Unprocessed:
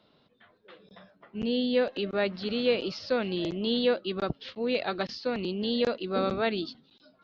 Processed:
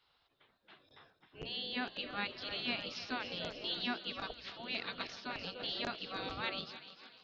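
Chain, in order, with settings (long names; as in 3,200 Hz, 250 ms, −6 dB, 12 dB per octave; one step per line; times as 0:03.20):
mains-hum notches 60/120/180/240 Hz
feedback echo with a high-pass in the loop 297 ms, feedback 70%, high-pass 590 Hz, level −12 dB
gate on every frequency bin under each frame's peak −10 dB weak
level −3.5 dB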